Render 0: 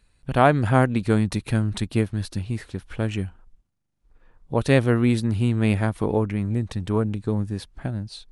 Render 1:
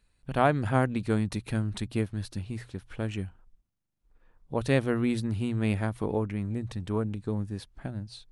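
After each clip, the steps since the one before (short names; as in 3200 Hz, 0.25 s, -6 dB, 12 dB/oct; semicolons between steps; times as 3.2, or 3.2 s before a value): notches 60/120 Hz; gain -6.5 dB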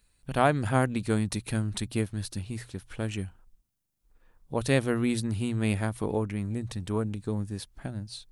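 high shelf 5400 Hz +11.5 dB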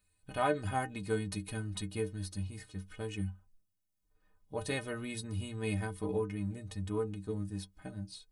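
metallic resonator 91 Hz, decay 0.28 s, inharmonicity 0.03; gain +2 dB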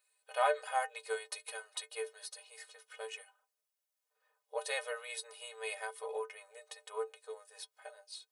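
brick-wall FIR high-pass 440 Hz; gain +1.5 dB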